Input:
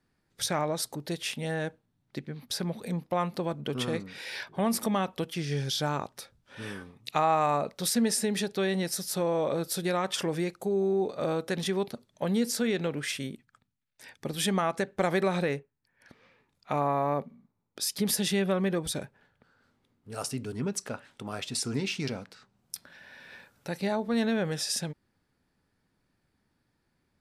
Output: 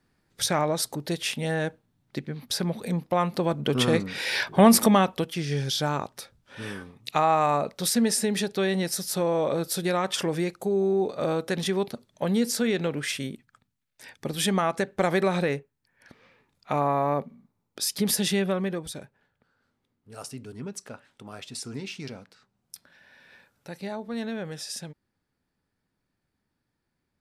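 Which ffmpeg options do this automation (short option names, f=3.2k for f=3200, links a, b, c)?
-af "volume=12dB,afade=t=in:st=3.24:d=1.42:silence=0.421697,afade=t=out:st=4.66:d=0.62:silence=0.354813,afade=t=out:st=18.29:d=0.63:silence=0.398107"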